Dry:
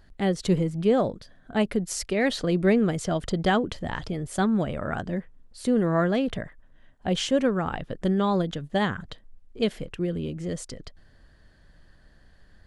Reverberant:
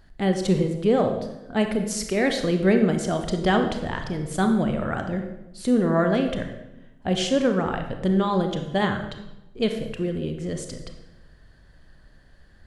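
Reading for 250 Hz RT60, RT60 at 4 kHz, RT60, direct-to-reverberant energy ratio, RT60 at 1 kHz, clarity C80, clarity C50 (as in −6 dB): 1.2 s, 0.75 s, 0.95 s, 5.0 dB, 0.90 s, 9.5 dB, 7.0 dB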